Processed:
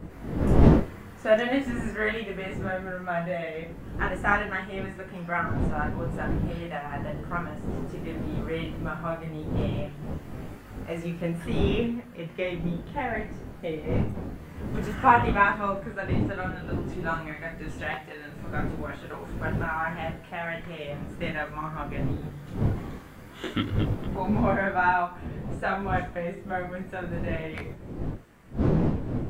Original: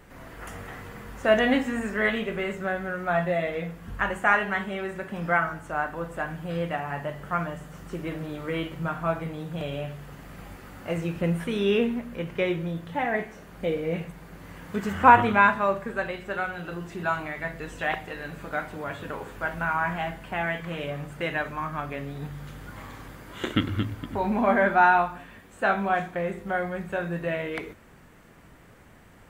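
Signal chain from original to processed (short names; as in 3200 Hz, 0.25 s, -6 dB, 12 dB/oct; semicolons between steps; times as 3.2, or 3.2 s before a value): wind noise 240 Hz -27 dBFS; detuned doubles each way 16 cents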